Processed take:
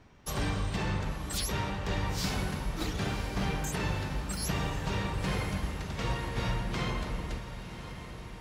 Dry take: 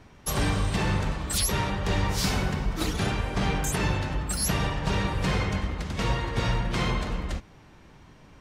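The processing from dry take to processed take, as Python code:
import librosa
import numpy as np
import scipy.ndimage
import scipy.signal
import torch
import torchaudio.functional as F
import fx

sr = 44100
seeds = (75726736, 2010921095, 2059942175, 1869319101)

p1 = fx.peak_eq(x, sr, hz=10000.0, db=-5.5, octaves=0.52)
p2 = p1 + fx.echo_diffused(p1, sr, ms=1034, feedback_pct=62, wet_db=-11, dry=0)
y = F.gain(torch.from_numpy(p2), -6.0).numpy()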